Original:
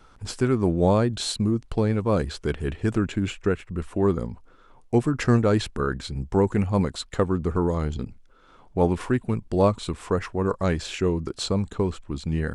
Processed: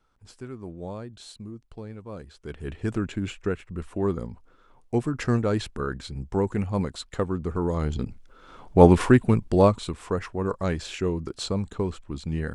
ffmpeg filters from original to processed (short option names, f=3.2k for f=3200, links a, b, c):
-af "volume=8dB,afade=t=in:st=2.38:d=0.42:silence=0.237137,afade=t=in:st=7.58:d=1.37:silence=0.251189,afade=t=out:st=8.95:d=0.98:silence=0.281838"